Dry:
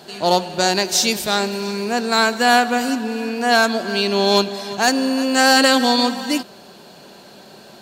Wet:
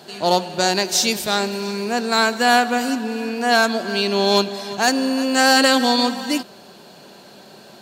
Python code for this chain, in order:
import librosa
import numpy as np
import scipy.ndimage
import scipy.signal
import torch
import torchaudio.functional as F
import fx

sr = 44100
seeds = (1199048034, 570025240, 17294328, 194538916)

y = scipy.signal.sosfilt(scipy.signal.butter(2, 60.0, 'highpass', fs=sr, output='sos'), x)
y = F.gain(torch.from_numpy(y), -1.0).numpy()